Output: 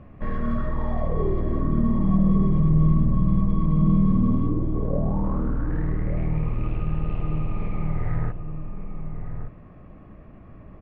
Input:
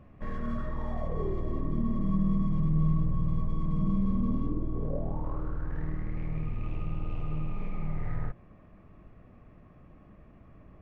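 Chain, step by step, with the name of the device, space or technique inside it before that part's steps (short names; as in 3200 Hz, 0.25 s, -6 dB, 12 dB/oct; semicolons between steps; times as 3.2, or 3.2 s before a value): shout across a valley (air absorption 180 m; outdoor echo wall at 200 m, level -8 dB); gain +8 dB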